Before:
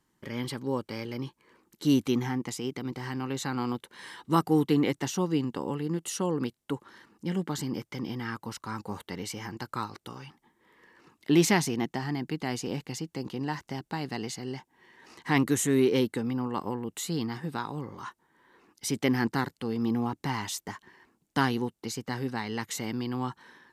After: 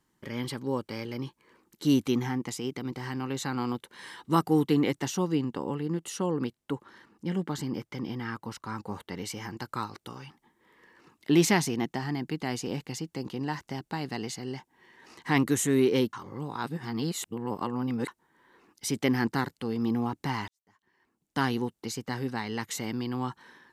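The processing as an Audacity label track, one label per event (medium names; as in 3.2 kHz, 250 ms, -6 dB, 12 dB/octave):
5.350000	9.160000	treble shelf 4.4 kHz -5.5 dB
16.130000	18.080000	reverse
20.480000	21.530000	fade in quadratic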